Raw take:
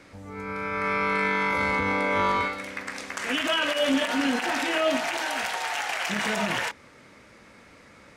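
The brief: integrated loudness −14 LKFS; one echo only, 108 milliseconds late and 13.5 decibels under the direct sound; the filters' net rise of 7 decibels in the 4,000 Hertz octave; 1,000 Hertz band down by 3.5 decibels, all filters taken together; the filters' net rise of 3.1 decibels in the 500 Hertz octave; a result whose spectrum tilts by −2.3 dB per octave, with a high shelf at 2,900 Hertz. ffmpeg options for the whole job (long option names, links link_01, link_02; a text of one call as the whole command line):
ffmpeg -i in.wav -af "equalizer=frequency=500:width_type=o:gain=6,equalizer=frequency=1000:width_type=o:gain=-7,highshelf=frequency=2900:gain=3.5,equalizer=frequency=4000:width_type=o:gain=8,aecho=1:1:108:0.211,volume=9dB" out.wav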